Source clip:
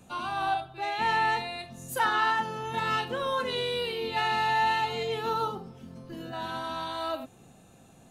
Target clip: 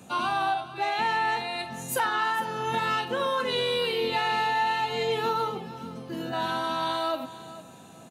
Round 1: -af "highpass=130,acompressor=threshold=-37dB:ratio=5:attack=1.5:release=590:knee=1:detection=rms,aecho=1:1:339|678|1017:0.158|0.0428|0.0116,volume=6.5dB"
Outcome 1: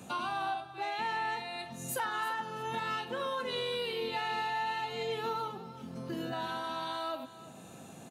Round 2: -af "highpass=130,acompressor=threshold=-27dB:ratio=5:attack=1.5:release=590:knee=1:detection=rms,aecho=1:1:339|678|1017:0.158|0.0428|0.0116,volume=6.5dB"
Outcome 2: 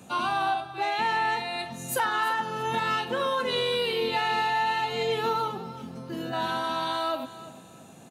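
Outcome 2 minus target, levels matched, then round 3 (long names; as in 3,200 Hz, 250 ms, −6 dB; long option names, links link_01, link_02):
echo 114 ms early
-af "highpass=130,acompressor=threshold=-27dB:ratio=5:attack=1.5:release=590:knee=1:detection=rms,aecho=1:1:453|906|1359:0.158|0.0428|0.0116,volume=6.5dB"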